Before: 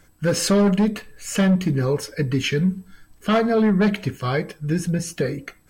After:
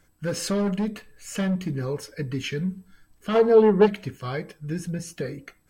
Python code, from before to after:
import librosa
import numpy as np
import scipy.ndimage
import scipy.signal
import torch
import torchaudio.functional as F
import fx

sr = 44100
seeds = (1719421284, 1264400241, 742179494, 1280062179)

y = fx.small_body(x, sr, hz=(460.0, 870.0, 2800.0), ring_ms=20, db=fx.line((3.34, 12.0), (3.85, 17.0)), at=(3.34, 3.85), fade=0.02)
y = F.gain(torch.from_numpy(y), -7.5).numpy()